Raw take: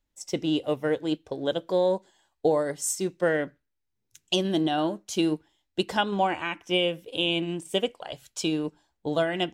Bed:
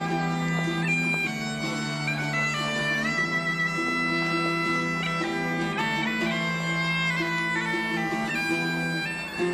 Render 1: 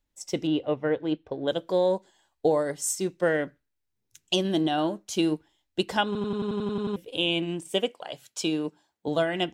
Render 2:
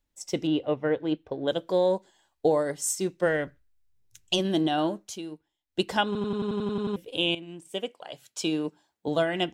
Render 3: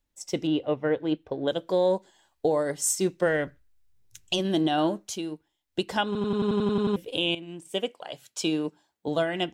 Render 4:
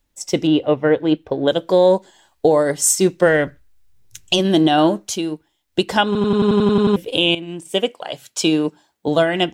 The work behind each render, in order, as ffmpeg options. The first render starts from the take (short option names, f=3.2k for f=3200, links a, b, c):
-filter_complex "[0:a]asettb=1/sr,asplit=3[a][b][c];[a]atrim=end=0.474[d];[b]atrim=start=0.47:end=1.48,asetpts=PTS-STARTPTS,afade=t=in:d=0.004:c=qsin,afade=t=out:st=1.006:d=0.004:c=qsin,lowpass=2.7k[e];[c]atrim=start=1.476[f];[d][e]acrossfade=d=0.004:c1=hsin:c2=qsin[g];[g][f]acrossfade=d=0.004:c1=qsin:c2=hsin,asettb=1/sr,asplit=3[h][i][j];[h]atrim=end=7.684[k];[i]atrim=start=7.68:end=9.08,asetpts=PTS-STARTPTS,afade=t=in:d=0.004:c=qsin,afade=t=out:st=1.396:d=0.004:c=qsin,highpass=150[l];[j]atrim=start=9.076[m];[k][l]acrossfade=d=0.004:c1=hsin:c2=qsin[n];[n][m]acrossfade=d=0.004:c1=qsin:c2=hsin,asplit=11[o][p][q][r][s][t][u][v][w][x][y];[o]atrim=end=6.152[z];[p]atrim=start=6.058:end=6.152[aa];[q]atrim=start=6.058:end=6.152[ab];[r]atrim=start=6.058:end=6.152[ac];[s]atrim=start=6.058:end=6.152[ad];[t]atrim=start=6.058:end=6.152[ae];[u]atrim=start=6.058:end=6.152[af];[v]atrim=start=6.058:end=6.152[ag];[w]atrim=start=6.058:end=6.152[ah];[x]atrim=start=6.058:end=6.152[ai];[y]atrim=start=6.958[aj];[z][aa]acrossfade=d=0.004:c1=hsin:c2=hsin[ak];[ak][ab]acrossfade=d=0.004:c1=hsin:c2=hsin[al];[al][ac]acrossfade=d=0.004:c1=hsin:c2=hsin[am];[am][ad]acrossfade=d=0.004:c1=hsin:c2=hsin[an];[an][ae]acrossfade=d=0.004:c1=hsin:c2=hsin[ao];[ao][af]acrossfade=d=0.004:c1=hsin:c2=hsin[ap];[ap][ag]acrossfade=d=0.004:c1=hsin:c2=hsin[aq];[aq][ah]acrossfade=d=0.004:c1=hsin:c2=hsin[ar];[ar][ai]acrossfade=d=0.004:c1=hsin:c2=hsin[as];[as][aj]acrossfade=d=0.004:c1=hsin:c2=hsin"
-filter_complex "[0:a]asplit=3[a][b][c];[a]afade=t=out:st=3.25:d=0.02[d];[b]asubboost=boost=7:cutoff=88,afade=t=in:st=3.25:d=0.02,afade=t=out:st=4.38:d=0.02[e];[c]afade=t=in:st=4.38:d=0.02[f];[d][e][f]amix=inputs=3:normalize=0,asplit=4[g][h][i][j];[g]atrim=end=5.19,asetpts=PTS-STARTPTS,afade=t=out:st=5.06:d=0.13:silence=0.211349[k];[h]atrim=start=5.19:end=5.66,asetpts=PTS-STARTPTS,volume=-13.5dB[l];[i]atrim=start=5.66:end=7.35,asetpts=PTS-STARTPTS,afade=t=in:d=0.13:silence=0.211349,afade=t=out:st=1.686:d=0.004:c=hsin:silence=0.188365[m];[j]atrim=start=7.35,asetpts=PTS-STARTPTS,afade=t=in:d=1.23:silence=0.188365[n];[k][l][m][n]concat=n=4:v=0:a=1"
-af "dynaudnorm=f=260:g=13:m=4.5dB,alimiter=limit=-14dB:level=0:latency=1:release=497"
-af "volume=10dB"